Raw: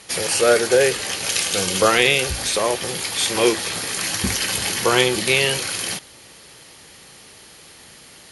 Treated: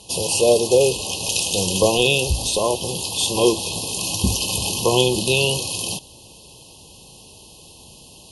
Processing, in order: brick-wall FIR band-stop 1100–2500 Hz; low shelf 130 Hz +10 dB

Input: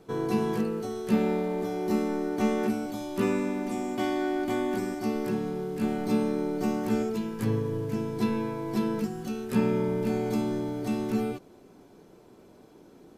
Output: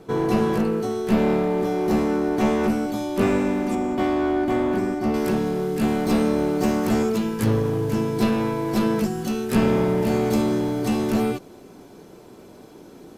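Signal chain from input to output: one-sided clip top -29 dBFS; high shelf 2900 Hz -3 dB, from 3.75 s -11 dB, from 5.14 s +3 dB; gain +8.5 dB

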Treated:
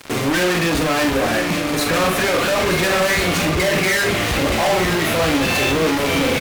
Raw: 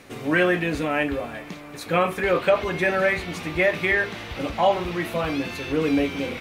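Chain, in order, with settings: 3.45–4.22 formant sharpening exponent 1.5; notch 910 Hz; fuzz box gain 41 dB, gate -43 dBFS; doubler 44 ms -6 dB; on a send: echo 0.921 s -8.5 dB; on the sum: gain -4.5 dB

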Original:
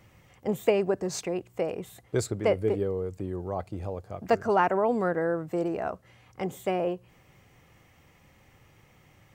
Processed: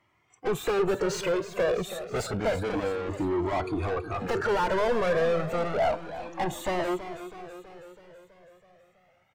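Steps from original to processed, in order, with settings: spectral noise reduction 25 dB; overdrive pedal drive 38 dB, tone 1600 Hz, clips at -9 dBFS; on a send: feedback echo 0.326 s, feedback 59%, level -12 dB; on the sum: cascading flanger rising 0.29 Hz; gain -5 dB

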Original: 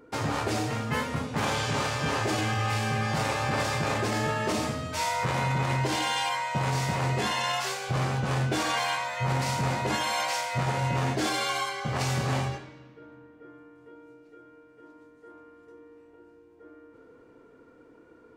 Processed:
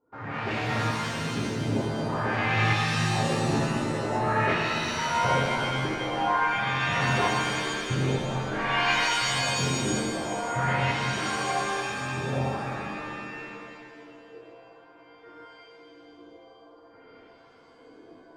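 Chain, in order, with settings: tremolo saw up 1.1 Hz, depth 95%; LFO low-pass sine 0.48 Hz 310–2500 Hz; shimmer reverb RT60 2.3 s, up +7 st, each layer -2 dB, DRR 0 dB

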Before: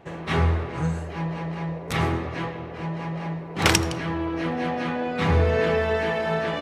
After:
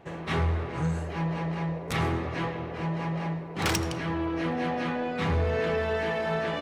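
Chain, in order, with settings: in parallel at 0 dB: vocal rider within 5 dB 0.5 s; on the sum: soft clip -10.5 dBFS, distortion -16 dB; gain -8.5 dB

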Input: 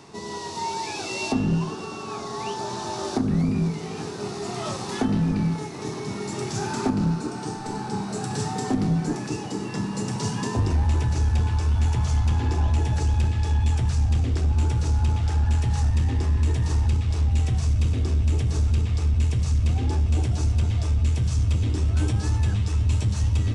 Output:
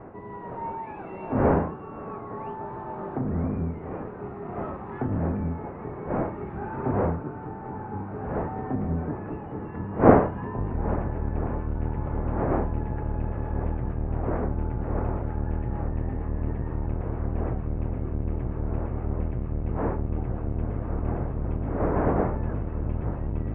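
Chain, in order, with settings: octaver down 1 oct, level +3 dB; wind noise 500 Hz -25 dBFS; Bessel low-pass 1100 Hz, order 8; tilt +2.5 dB/oct; gain -2 dB

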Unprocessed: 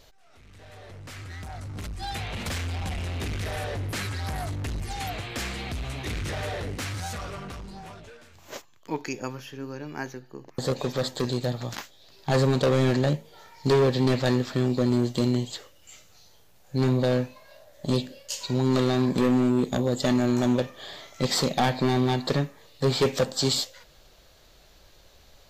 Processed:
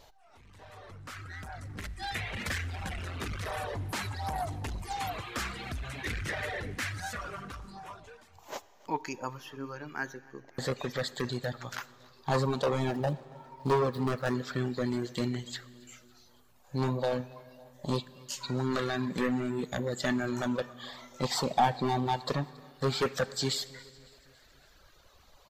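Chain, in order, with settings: 12.91–14.35 median filter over 15 samples; reverb removal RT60 1.2 s; in parallel at -1 dB: limiter -25.5 dBFS, peak gain reduction 10.5 dB; on the sum: feedback echo 0.278 s, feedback 59%, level -24 dB; on a send at -17.5 dB: reverb RT60 2.2 s, pre-delay 8 ms; on the sum: LFO bell 0.23 Hz 850–1900 Hz +10 dB; gain -9 dB

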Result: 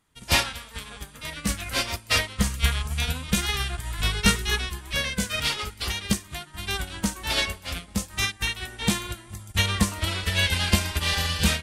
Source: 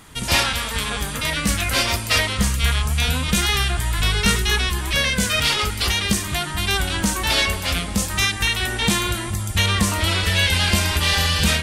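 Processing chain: upward expander 2.5:1, over -31 dBFS

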